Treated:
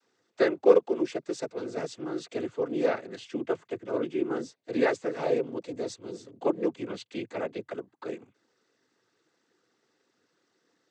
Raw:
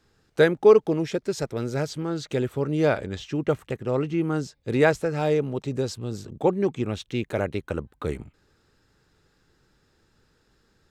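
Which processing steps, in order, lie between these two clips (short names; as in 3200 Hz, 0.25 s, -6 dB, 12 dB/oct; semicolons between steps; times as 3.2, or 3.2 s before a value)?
resonant low shelf 210 Hz -11 dB, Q 1.5; noise vocoder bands 16; gain -6 dB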